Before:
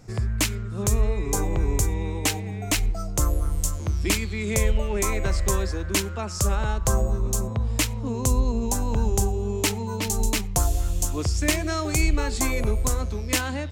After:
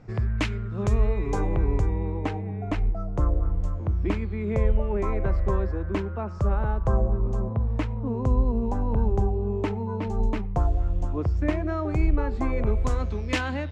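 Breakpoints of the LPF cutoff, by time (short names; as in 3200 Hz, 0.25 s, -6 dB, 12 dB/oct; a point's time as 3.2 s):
1.37 s 2500 Hz
2.09 s 1200 Hz
12.46 s 1200 Hz
12.95 s 3100 Hz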